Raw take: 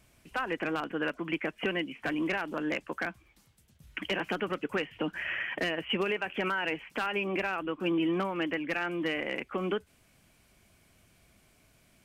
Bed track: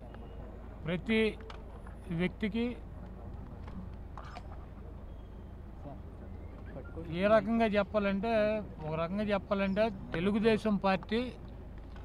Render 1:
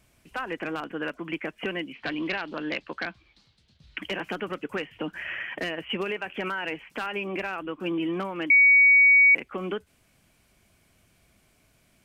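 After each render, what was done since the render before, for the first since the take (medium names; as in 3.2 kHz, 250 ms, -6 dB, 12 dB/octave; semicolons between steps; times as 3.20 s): 1.93–3.98 s: resonant low-pass 4.2 kHz, resonance Q 4; 8.50–9.35 s: bleep 2.25 kHz -13 dBFS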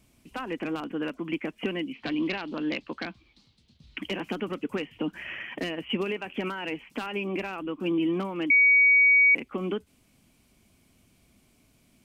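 fifteen-band graphic EQ 250 Hz +7 dB, 630 Hz -3 dB, 1.6 kHz -7 dB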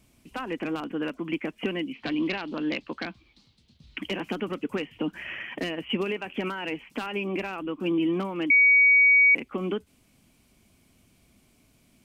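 trim +1 dB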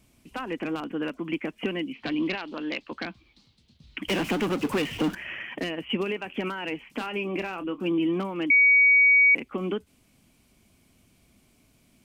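2.35–2.92 s: peaking EQ 100 Hz -9.5 dB 2.8 oct; 4.08–5.15 s: power-law waveshaper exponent 0.5; 6.83–7.82 s: doubling 28 ms -12 dB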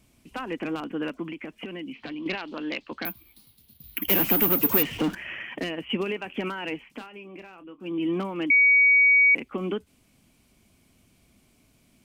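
1.27–2.26 s: compression 10:1, threshold -32 dBFS; 3.05–4.83 s: careless resampling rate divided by 3×, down none, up zero stuff; 6.75–8.13 s: dip -13 dB, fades 0.34 s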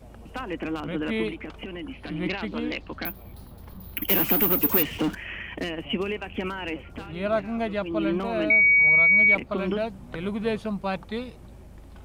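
add bed track +0.5 dB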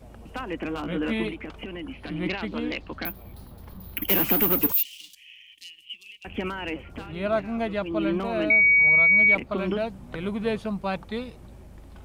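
0.69–1.27 s: doubling 17 ms -6 dB; 4.72–6.25 s: inverse Chebyshev high-pass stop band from 1.6 kHz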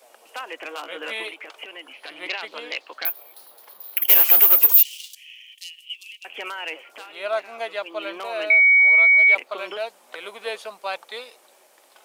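high-pass 490 Hz 24 dB/octave; treble shelf 3 kHz +10 dB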